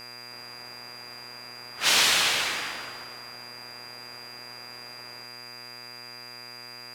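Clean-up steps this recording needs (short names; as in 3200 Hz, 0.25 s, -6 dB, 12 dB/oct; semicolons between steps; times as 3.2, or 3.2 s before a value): de-hum 121.6 Hz, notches 22; notch 4800 Hz, Q 30; noise print and reduce 29 dB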